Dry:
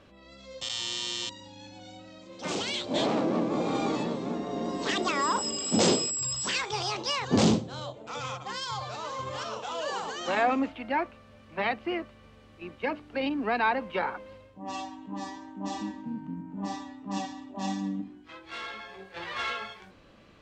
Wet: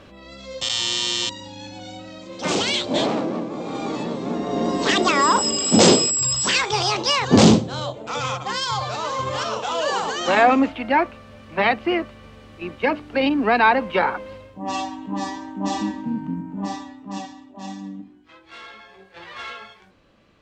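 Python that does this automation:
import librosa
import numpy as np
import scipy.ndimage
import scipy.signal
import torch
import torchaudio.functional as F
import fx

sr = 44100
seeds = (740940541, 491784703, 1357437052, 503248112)

y = fx.gain(x, sr, db=fx.line((2.75, 10.0), (3.56, -2.0), (4.61, 10.0), (16.3, 10.0), (17.53, -2.0)))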